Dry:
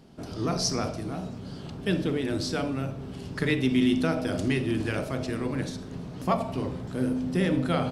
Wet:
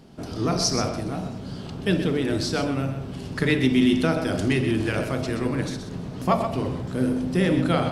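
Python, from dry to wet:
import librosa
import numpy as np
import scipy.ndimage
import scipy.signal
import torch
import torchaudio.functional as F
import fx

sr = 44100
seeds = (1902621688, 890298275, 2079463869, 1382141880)

y = x + 10.0 ** (-9.5 / 20.0) * np.pad(x, (int(127 * sr / 1000.0), 0))[:len(x)]
y = F.gain(torch.from_numpy(y), 4.0).numpy()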